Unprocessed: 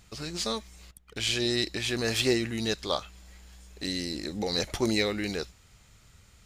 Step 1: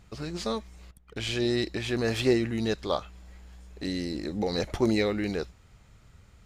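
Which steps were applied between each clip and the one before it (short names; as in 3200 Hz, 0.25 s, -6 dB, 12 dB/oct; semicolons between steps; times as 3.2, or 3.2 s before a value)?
high shelf 2400 Hz -12 dB; gain +3 dB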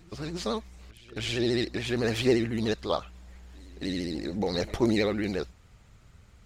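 vibrato 14 Hz 98 cents; pre-echo 0.274 s -22.5 dB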